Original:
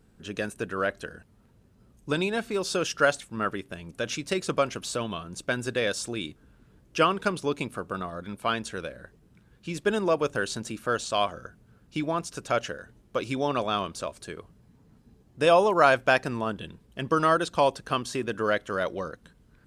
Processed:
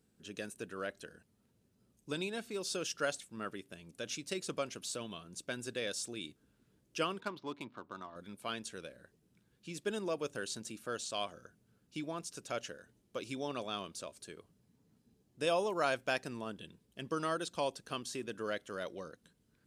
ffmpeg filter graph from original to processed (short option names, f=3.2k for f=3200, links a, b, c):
-filter_complex "[0:a]asettb=1/sr,asplit=3[a][b][c];[a]atrim=end=7.204[d];[b]atrim=start=7.2:end=8.16,asetpts=PTS-STARTPTS,afade=t=in:d=0.004:c=qsin,afade=t=out:st=0.956:d=0.004:c=qsin,highpass=110,equalizer=f=170:t=q:w=4:g=-9,equalizer=f=470:t=q:w=4:g=-9,equalizer=f=970:t=q:w=4:g=9,equalizer=f=2.6k:t=q:w=4:g=-5,lowpass=f=4.6k:w=0.5412,lowpass=f=4.6k:w=1.3066,adynamicsmooth=sensitivity=6:basefreq=2.9k[e];[c]atrim=start=8.156[f];[d][e]acrossfade=d=0.004:c1=hsin:c2=qsin[g];[g][f]acrossfade=d=0.004:c1=qsin:c2=hsin,highpass=f=330:p=1,equalizer=f=1.1k:w=0.47:g=-10,volume=-4.5dB"